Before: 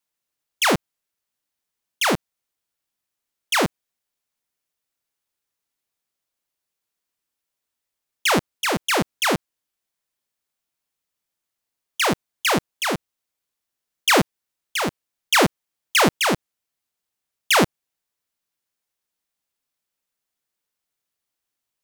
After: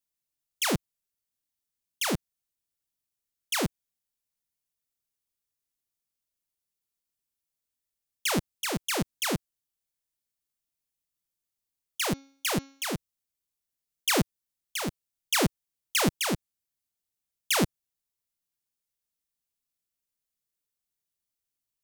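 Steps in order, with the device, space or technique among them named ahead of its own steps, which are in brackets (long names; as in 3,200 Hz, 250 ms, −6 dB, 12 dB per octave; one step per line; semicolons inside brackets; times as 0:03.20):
0:12.05–0:12.91: hum removal 273.2 Hz, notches 25
smiley-face EQ (low-shelf EQ 160 Hz +7 dB; parametric band 1,100 Hz −5.5 dB 2.9 octaves; high-shelf EQ 5,600 Hz +4.5 dB)
level −7 dB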